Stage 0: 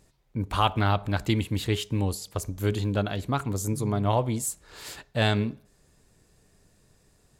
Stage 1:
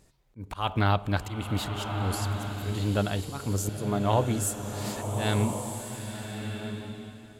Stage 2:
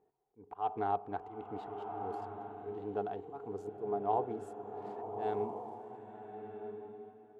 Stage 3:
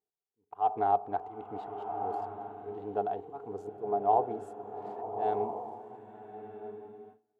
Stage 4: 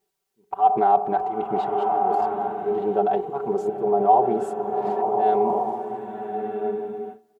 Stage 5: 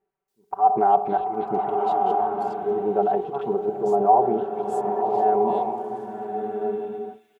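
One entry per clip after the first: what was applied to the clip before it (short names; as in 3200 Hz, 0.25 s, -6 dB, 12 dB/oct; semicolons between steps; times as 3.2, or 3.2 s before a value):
auto swell 0.224 s; bloom reverb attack 1.33 s, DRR 4.5 dB
Wiener smoothing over 9 samples; double band-pass 570 Hz, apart 0.78 oct; gain +1 dB
gate with hold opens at -42 dBFS; dynamic EQ 690 Hz, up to +8 dB, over -48 dBFS, Q 1.4
comb 5.2 ms, depth 92%; in parallel at -0.5 dB: negative-ratio compressor -34 dBFS, ratio -1; on the sum: gain +5 dB
bands offset in time lows, highs 0.28 s, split 2200 Hz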